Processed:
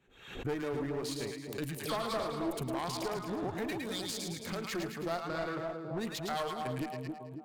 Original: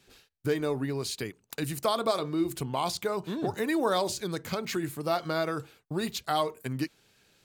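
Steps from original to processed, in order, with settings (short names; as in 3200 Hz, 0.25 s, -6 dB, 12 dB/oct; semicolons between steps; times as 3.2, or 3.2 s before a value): Wiener smoothing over 9 samples; 3.67–4.46 EQ curve 210 Hz 0 dB, 950 Hz -28 dB, 2200 Hz +3 dB; spectral noise reduction 10 dB; 1.77–2.51 dispersion lows, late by 74 ms, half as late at 1600 Hz; on a send: split-band echo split 900 Hz, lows 0.275 s, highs 0.109 s, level -5 dB; on the sum: one-sided clip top -31.5 dBFS; in parallel at -1.5 dB: limiter -23.5 dBFS, peak gain reduction 6 dB; 5.2–5.98 on the sum: high shelf 6300 Hz -10 dB; backwards sustainer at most 85 dB/s; gain -9 dB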